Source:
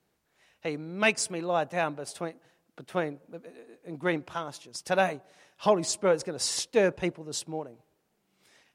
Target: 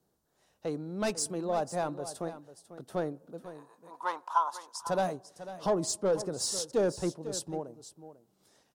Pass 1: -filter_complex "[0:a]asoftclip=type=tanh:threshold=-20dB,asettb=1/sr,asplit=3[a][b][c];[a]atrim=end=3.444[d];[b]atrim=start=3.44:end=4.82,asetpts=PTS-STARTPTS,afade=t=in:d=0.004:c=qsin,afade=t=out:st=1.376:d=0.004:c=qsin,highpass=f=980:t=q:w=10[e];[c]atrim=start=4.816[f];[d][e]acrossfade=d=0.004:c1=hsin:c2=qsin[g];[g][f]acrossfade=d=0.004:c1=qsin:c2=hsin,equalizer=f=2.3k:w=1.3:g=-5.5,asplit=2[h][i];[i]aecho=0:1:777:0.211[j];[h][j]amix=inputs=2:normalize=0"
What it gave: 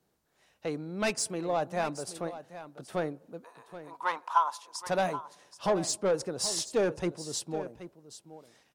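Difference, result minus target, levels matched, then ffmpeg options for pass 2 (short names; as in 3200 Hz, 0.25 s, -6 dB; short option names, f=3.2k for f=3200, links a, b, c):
echo 0.281 s late; 2000 Hz band +4.5 dB
-filter_complex "[0:a]asoftclip=type=tanh:threshold=-20dB,asettb=1/sr,asplit=3[a][b][c];[a]atrim=end=3.444[d];[b]atrim=start=3.44:end=4.82,asetpts=PTS-STARTPTS,afade=t=in:d=0.004:c=qsin,afade=t=out:st=1.376:d=0.004:c=qsin,highpass=f=980:t=q:w=10[e];[c]atrim=start=4.816[f];[d][e]acrossfade=d=0.004:c1=hsin:c2=qsin[g];[g][f]acrossfade=d=0.004:c1=qsin:c2=hsin,equalizer=f=2.3k:w=1.3:g=-15.5,asplit=2[h][i];[i]aecho=0:1:496:0.211[j];[h][j]amix=inputs=2:normalize=0"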